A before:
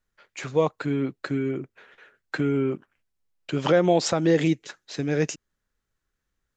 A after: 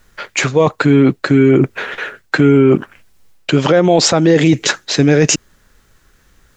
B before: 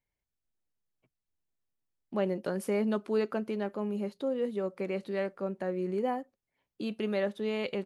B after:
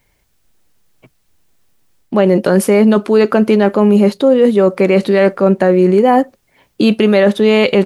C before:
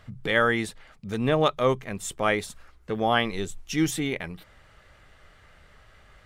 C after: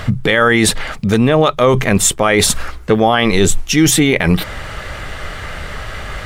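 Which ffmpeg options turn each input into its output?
-af "areverse,acompressor=threshold=0.02:ratio=6,areverse,alimiter=level_in=28.2:limit=0.891:release=50:level=0:latency=1,volume=0.891"

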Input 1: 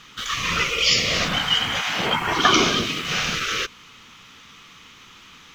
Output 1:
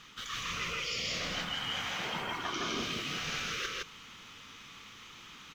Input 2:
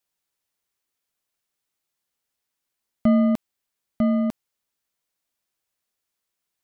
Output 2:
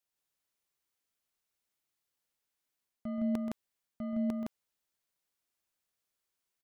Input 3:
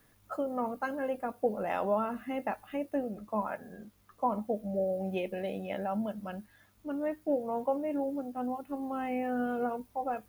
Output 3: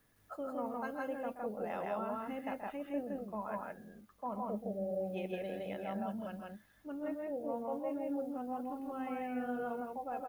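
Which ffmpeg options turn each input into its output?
-af "areverse,acompressor=threshold=0.0355:ratio=6,areverse,aecho=1:1:128.3|163.3:0.316|0.891,volume=0.447"

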